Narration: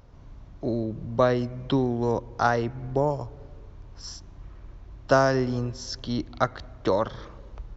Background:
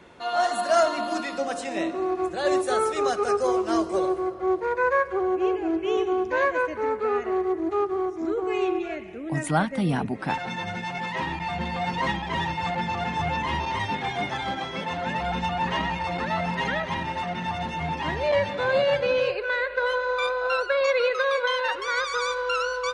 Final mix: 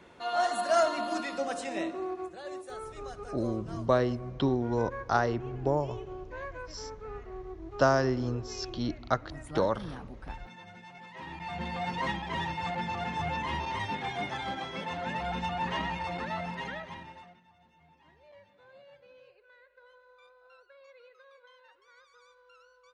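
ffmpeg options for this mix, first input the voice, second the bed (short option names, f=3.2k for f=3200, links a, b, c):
-filter_complex "[0:a]adelay=2700,volume=-4dB[a];[1:a]volume=7.5dB,afade=t=out:st=1.68:d=0.78:silence=0.211349,afade=t=in:st=11.14:d=0.53:silence=0.251189,afade=t=out:st=16.01:d=1.4:silence=0.0421697[b];[a][b]amix=inputs=2:normalize=0"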